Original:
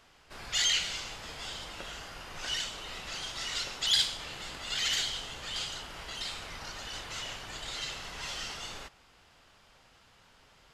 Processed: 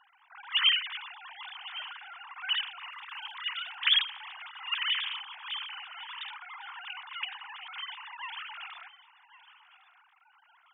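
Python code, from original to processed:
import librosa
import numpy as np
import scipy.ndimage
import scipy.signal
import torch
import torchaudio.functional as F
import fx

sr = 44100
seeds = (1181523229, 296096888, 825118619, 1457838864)

p1 = fx.sine_speech(x, sr)
p2 = fx.dmg_crackle(p1, sr, seeds[0], per_s=fx.line((2.85, 77.0), (3.75, 21.0)), level_db=-55.0, at=(2.85, 3.75), fade=0.02)
p3 = fx.low_shelf_res(p2, sr, hz=760.0, db=-9.0, q=3.0)
y = p3 + fx.echo_single(p3, sr, ms=1106, db=-17.5, dry=0)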